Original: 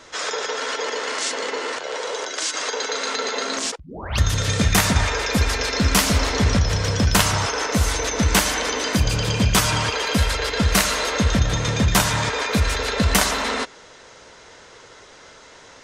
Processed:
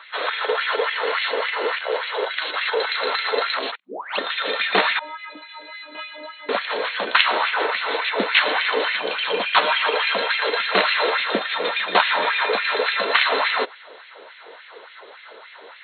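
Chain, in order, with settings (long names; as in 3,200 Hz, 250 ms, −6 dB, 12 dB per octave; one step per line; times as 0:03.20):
brick-wall band-pass 180–4,300 Hz
0:04.99–0:06.49: stiff-string resonator 300 Hz, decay 0.46 s, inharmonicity 0.008
auto-filter high-pass sine 3.5 Hz 390–2,300 Hz
level +1 dB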